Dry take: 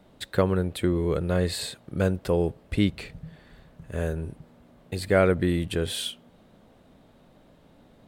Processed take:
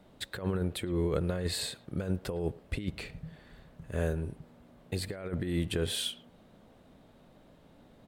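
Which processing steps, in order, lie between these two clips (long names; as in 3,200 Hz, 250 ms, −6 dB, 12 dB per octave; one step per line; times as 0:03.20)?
compressor whose output falls as the input rises −25 dBFS, ratio −0.5
far-end echo of a speakerphone 110 ms, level −20 dB
level −5 dB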